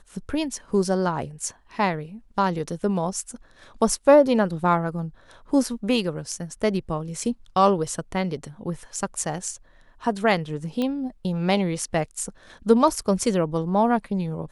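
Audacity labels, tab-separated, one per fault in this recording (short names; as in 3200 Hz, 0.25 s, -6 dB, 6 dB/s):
10.820000	10.820000	pop -15 dBFS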